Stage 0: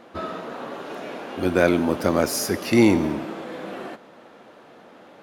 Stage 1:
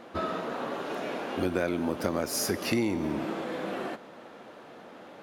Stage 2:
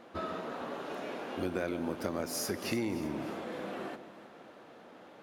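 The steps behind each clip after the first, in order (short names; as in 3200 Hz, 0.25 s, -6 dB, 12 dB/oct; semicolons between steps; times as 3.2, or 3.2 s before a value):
compressor 6:1, threshold -25 dBFS, peak gain reduction 13 dB
echo with dull and thin repeats by turns 0.151 s, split 990 Hz, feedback 67%, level -12 dB; gain -6 dB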